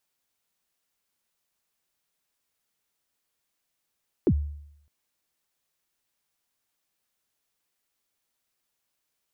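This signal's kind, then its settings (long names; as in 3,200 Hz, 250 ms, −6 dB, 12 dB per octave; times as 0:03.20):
synth kick length 0.61 s, from 440 Hz, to 73 Hz, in 62 ms, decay 0.75 s, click off, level −15 dB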